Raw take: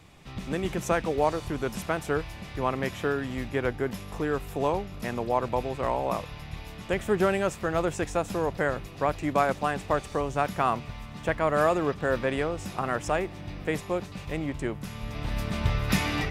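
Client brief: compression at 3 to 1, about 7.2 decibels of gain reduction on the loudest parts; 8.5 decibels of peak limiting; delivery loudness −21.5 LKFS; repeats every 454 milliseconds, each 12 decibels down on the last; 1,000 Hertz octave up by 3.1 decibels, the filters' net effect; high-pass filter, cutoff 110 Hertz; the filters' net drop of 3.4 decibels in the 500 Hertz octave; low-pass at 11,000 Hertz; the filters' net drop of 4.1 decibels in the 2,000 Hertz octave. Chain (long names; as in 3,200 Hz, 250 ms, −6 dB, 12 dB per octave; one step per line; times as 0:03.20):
high-pass filter 110 Hz
low-pass filter 11,000 Hz
parametric band 500 Hz −6.5 dB
parametric band 1,000 Hz +8.5 dB
parametric band 2,000 Hz −9 dB
downward compressor 3 to 1, threshold −27 dBFS
brickwall limiter −23.5 dBFS
repeating echo 454 ms, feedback 25%, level −12 dB
level +14.5 dB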